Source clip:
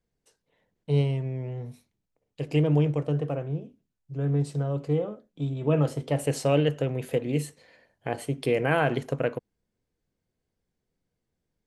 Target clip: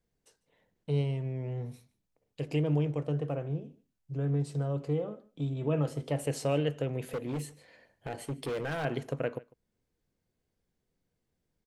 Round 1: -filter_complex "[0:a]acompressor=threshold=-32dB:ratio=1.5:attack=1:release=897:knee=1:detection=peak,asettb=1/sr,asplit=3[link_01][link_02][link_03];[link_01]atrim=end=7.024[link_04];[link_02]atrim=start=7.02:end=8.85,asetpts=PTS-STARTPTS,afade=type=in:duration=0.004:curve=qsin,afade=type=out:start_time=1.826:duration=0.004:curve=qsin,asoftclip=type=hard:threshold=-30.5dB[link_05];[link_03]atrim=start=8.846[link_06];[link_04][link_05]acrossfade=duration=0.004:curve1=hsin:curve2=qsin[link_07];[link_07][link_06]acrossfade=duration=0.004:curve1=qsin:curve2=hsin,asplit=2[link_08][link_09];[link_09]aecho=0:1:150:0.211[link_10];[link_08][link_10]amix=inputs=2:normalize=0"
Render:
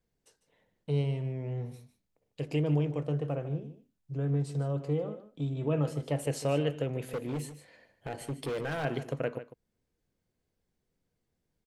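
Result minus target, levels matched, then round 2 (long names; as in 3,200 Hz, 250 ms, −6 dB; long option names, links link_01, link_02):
echo-to-direct +9.5 dB
-filter_complex "[0:a]acompressor=threshold=-32dB:ratio=1.5:attack=1:release=897:knee=1:detection=peak,asettb=1/sr,asplit=3[link_01][link_02][link_03];[link_01]atrim=end=7.024[link_04];[link_02]atrim=start=7.02:end=8.85,asetpts=PTS-STARTPTS,afade=type=in:duration=0.004:curve=qsin,afade=type=out:start_time=1.826:duration=0.004:curve=qsin,asoftclip=type=hard:threshold=-30.5dB[link_05];[link_03]atrim=start=8.846[link_06];[link_04][link_05]acrossfade=duration=0.004:curve1=hsin:curve2=qsin[link_07];[link_07][link_06]acrossfade=duration=0.004:curve1=qsin:curve2=hsin,asplit=2[link_08][link_09];[link_09]aecho=0:1:150:0.0708[link_10];[link_08][link_10]amix=inputs=2:normalize=0"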